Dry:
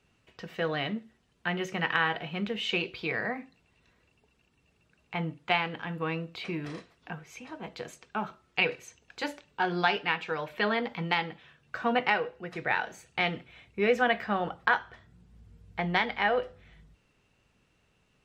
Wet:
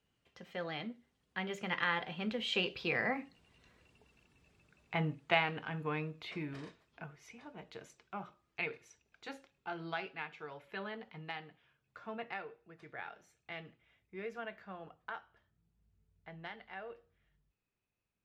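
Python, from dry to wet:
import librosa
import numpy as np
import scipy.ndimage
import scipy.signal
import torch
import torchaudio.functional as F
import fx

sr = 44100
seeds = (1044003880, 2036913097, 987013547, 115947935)

y = fx.doppler_pass(x, sr, speed_mps=23, closest_m=24.0, pass_at_s=4.01)
y = F.gain(torch.from_numpy(y), 1.0).numpy()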